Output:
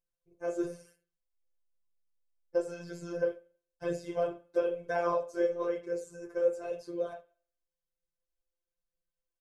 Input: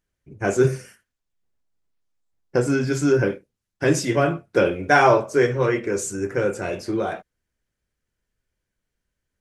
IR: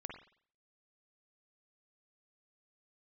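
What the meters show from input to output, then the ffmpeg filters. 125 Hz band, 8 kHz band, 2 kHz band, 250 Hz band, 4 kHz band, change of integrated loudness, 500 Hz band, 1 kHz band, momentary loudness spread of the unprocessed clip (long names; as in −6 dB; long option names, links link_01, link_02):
−24.0 dB, below −20 dB, −20.0 dB, −16.0 dB, below −15 dB, −12.5 dB, −10.5 dB, −16.0 dB, 10 LU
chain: -filter_complex "[0:a]acrossover=split=2900[link_01][link_02];[link_02]acompressor=threshold=-38dB:ratio=4:attack=1:release=60[link_03];[link_01][link_03]amix=inputs=2:normalize=0,equalizer=frequency=125:width_type=o:width=1:gain=-4,equalizer=frequency=250:width_type=o:width=1:gain=-9,equalizer=frequency=500:width_type=o:width=1:gain=7,equalizer=frequency=2000:width_type=o:width=1:gain=-11,equalizer=frequency=8000:width_type=o:width=1:gain=-3,asplit=2[link_04][link_05];[1:a]atrim=start_sample=2205,highshelf=frequency=3300:gain=9.5[link_06];[link_05][link_06]afir=irnorm=-1:irlink=0,volume=-12.5dB[link_07];[link_04][link_07]amix=inputs=2:normalize=0,afftfilt=real='hypot(re,im)*cos(PI*b)':imag='0':win_size=1024:overlap=0.75,flanger=delay=0.4:depth=3.1:regen=-21:speed=1:shape=sinusoidal,aecho=1:1:1.9:0.53,volume=-8.5dB"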